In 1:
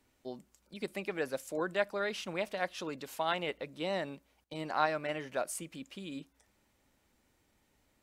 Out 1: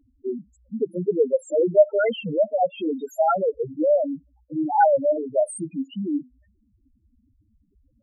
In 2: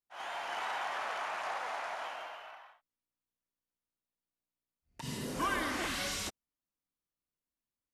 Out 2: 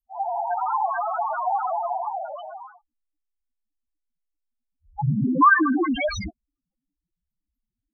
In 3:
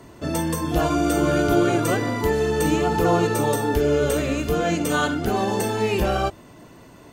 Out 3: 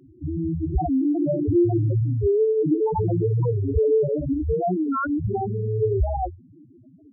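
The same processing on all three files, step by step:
dynamic EQ 100 Hz, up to +8 dB, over -44 dBFS, Q 1.8; loudest bins only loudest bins 2; record warp 45 rpm, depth 160 cents; match loudness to -23 LUFS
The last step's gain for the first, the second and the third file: +19.0, +24.0, +3.5 dB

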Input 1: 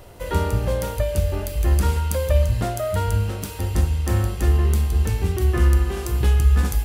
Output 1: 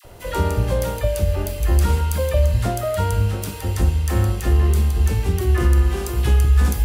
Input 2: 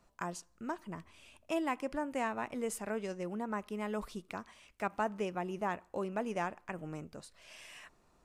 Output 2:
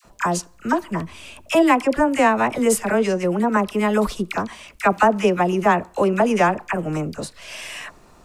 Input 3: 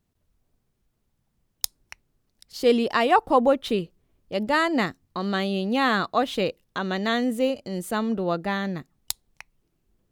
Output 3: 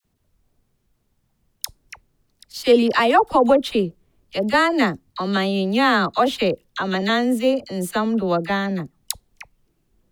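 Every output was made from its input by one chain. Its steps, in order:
dispersion lows, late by 48 ms, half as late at 970 Hz; maximiser +8.5 dB; match loudness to -20 LUFS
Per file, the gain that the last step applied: -6.5, +10.0, -3.5 dB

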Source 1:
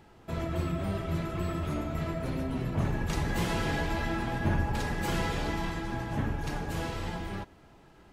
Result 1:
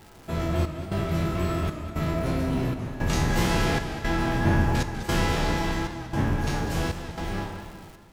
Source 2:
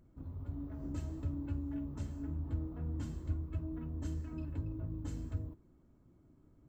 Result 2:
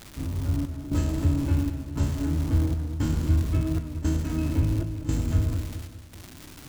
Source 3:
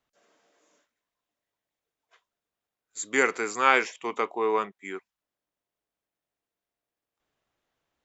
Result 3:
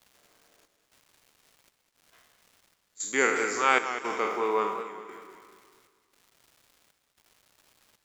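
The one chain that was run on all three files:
spectral trails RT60 0.72 s; on a send: echo with dull and thin repeats by turns 0.121 s, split 1500 Hz, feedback 64%, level -10 dB; on the sum: crackle 500/s -45 dBFS; dynamic EQ 5500 Hz, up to +3 dB, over -56 dBFS, Q 2.4; step gate "xxxxx..x" 115 bpm -12 dB; warbling echo 0.2 s, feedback 46%, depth 101 cents, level -11 dB; match loudness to -27 LUFS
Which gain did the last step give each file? +3.5, +13.0, -3.0 dB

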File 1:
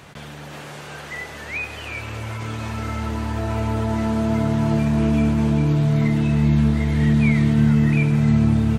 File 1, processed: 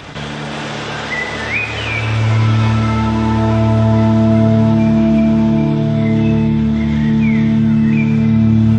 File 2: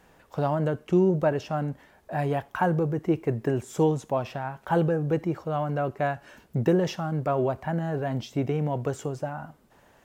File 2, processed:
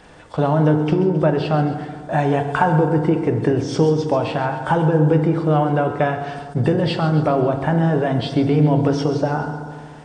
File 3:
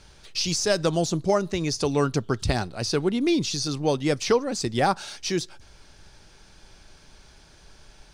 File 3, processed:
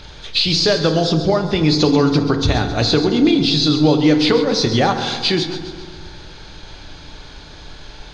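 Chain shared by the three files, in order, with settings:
nonlinear frequency compression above 3100 Hz 1.5:1; bell 3500 Hz +6 dB 0.26 oct; compressor 5:1, threshold -27 dBFS; thin delay 0.134 s, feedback 52%, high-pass 3600 Hz, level -9 dB; FDN reverb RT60 1.9 s, low-frequency decay 1.1×, high-frequency decay 0.25×, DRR 5 dB; attack slew limiter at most 550 dB/s; normalise peaks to -2 dBFS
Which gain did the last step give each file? +12.0, +11.5, +13.0 dB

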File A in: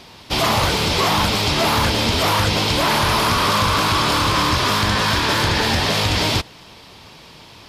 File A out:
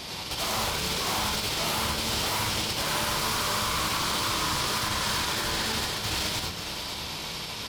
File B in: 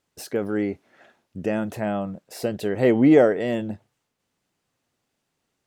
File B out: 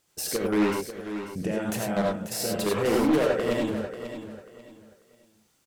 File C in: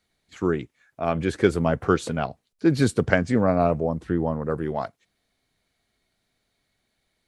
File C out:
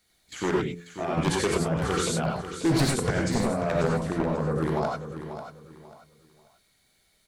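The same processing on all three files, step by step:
high shelf 4700 Hz +10.5 dB; de-hum 86.18 Hz, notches 6; in parallel at -2 dB: negative-ratio compressor -26 dBFS, ratio -1; on the sum: limiter -11 dBFS; level quantiser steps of 10 dB; wavefolder -17.5 dBFS; on a send: feedback echo 0.54 s, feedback 27%, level -10.5 dB; on the sum: non-linear reverb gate 0.12 s rising, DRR -1 dB; Doppler distortion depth 0.16 ms; match loudness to -27 LUFS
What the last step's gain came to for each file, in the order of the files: -8.5, -2.0, -0.5 dB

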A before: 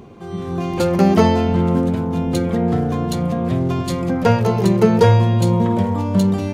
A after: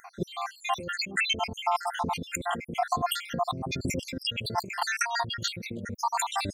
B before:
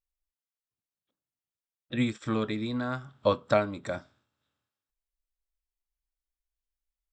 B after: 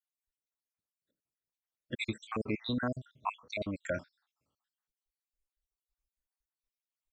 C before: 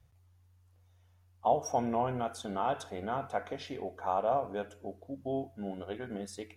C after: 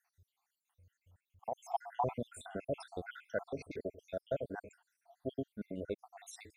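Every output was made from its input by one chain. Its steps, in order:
random spectral dropouts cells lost 74%; dynamic EQ 5200 Hz, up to +5 dB, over -51 dBFS, Q 0.8; negative-ratio compressor -31 dBFS, ratio -1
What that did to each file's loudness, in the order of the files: -13.0, -7.0, -7.0 LU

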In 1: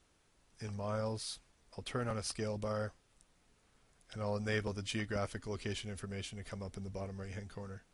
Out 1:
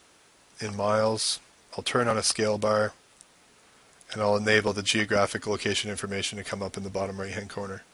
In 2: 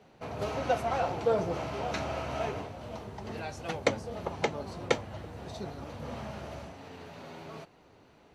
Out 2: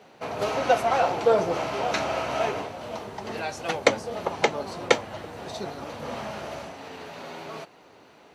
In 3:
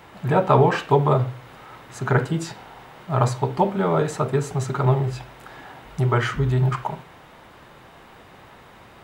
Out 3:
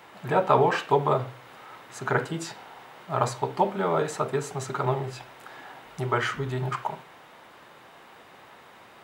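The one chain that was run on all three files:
HPF 370 Hz 6 dB/oct; match loudness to -27 LUFS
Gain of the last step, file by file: +16.0, +9.0, -2.0 dB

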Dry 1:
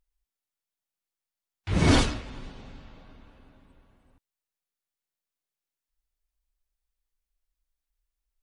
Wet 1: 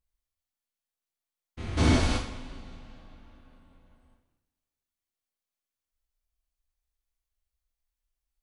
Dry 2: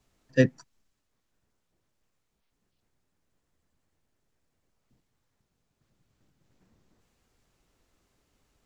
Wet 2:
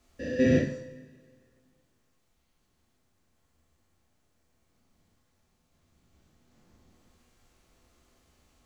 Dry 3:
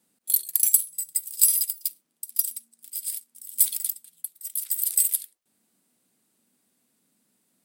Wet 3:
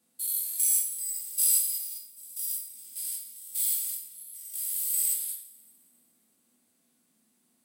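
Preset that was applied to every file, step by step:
stepped spectrum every 0.2 s; two-slope reverb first 0.49 s, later 2.1 s, from -22 dB, DRR -3.5 dB; match loudness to -27 LUFS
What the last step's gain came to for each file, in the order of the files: -5.5, +2.5, -4.0 dB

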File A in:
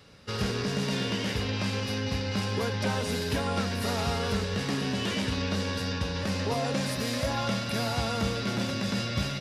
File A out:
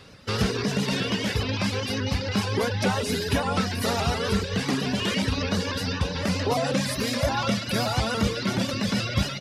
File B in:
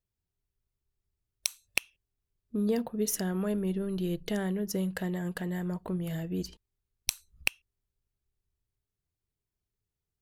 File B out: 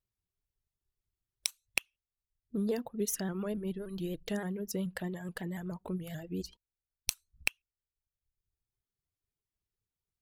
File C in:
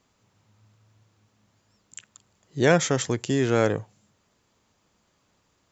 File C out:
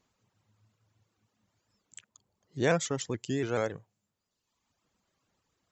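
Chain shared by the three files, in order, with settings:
reverb removal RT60 1.1 s; shaped vibrato saw up 7 Hz, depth 100 cents; normalise peaks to -12 dBFS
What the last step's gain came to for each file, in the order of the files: +6.5, -2.5, -7.0 dB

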